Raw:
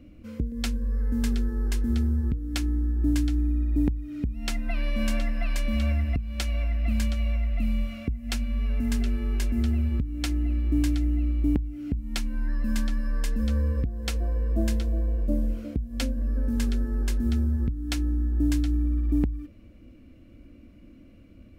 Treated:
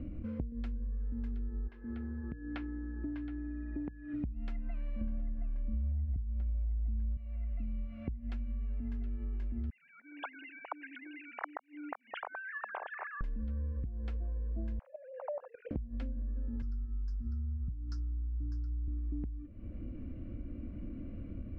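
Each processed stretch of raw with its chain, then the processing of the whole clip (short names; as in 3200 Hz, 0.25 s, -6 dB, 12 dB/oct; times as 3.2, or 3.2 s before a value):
1.67–4.13 HPF 680 Hz 6 dB/oct + air absorption 260 m + whine 1700 Hz -54 dBFS
5.01–7.17 HPF 50 Hz 24 dB/oct + tilt -4 dB/oct
9.7–13.21 sine-wave speech + inverse Chebyshev high-pass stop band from 210 Hz, stop band 60 dB + upward compressor, threshold -43 dBFS
14.79–15.71 sine-wave speech + steep high-pass 520 Hz 96 dB/oct + level quantiser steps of 16 dB
16.62–18.88 EQ curve 160 Hz 0 dB, 300 Hz -9 dB, 650 Hz -26 dB, 1000 Hz -8 dB, 1400 Hz 0 dB, 2200 Hz -26 dB, 3500 Hz -21 dB, 5100 Hz +15 dB, 11000 Hz -12 dB + three-band expander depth 40%
whole clip: LPF 1800 Hz 12 dB/oct; low shelf 230 Hz +8 dB; compressor 6:1, threshold -41 dBFS; gain +4 dB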